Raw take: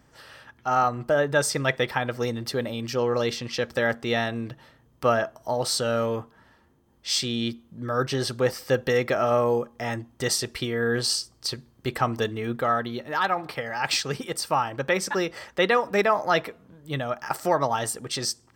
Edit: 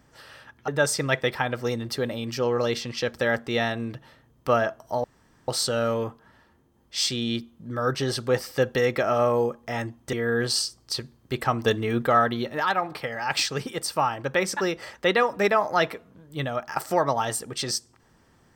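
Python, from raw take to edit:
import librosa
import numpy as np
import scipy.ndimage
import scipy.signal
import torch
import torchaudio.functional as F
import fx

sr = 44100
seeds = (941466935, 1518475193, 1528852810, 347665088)

y = fx.edit(x, sr, fx.cut(start_s=0.68, length_s=0.56),
    fx.insert_room_tone(at_s=5.6, length_s=0.44),
    fx.cut(start_s=10.25, length_s=0.42),
    fx.clip_gain(start_s=12.2, length_s=0.94, db=4.0), tone=tone)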